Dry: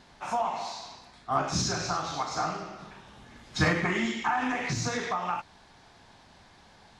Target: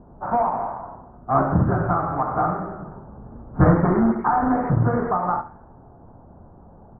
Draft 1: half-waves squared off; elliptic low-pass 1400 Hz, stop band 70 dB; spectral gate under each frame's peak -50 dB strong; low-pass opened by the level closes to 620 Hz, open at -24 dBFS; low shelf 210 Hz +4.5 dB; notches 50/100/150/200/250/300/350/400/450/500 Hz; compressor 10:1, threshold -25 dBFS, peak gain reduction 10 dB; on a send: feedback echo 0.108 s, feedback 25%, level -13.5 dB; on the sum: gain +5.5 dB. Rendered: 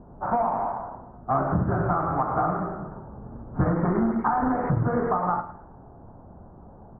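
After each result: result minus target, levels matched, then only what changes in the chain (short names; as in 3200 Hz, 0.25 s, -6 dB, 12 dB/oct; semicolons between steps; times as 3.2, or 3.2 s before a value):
echo 38 ms late; compressor: peak gain reduction +10 dB
change: feedback echo 70 ms, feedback 25%, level -13.5 dB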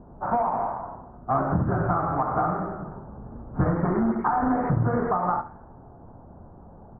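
compressor: peak gain reduction +10 dB
remove: compressor 10:1, threshold -25 dBFS, peak gain reduction 10 dB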